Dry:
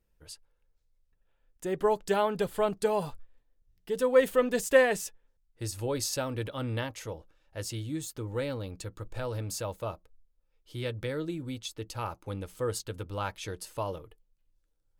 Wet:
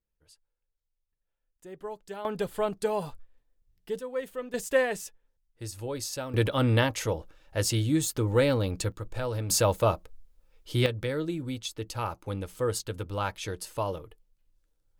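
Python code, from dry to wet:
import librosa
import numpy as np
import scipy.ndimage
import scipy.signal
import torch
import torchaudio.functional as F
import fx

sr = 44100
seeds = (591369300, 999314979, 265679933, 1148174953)

y = fx.gain(x, sr, db=fx.steps((0.0, -12.5), (2.25, -1.0), (3.99, -11.0), (4.54, -3.0), (6.34, 9.5), (8.92, 3.0), (9.5, 11.5), (10.86, 3.0)))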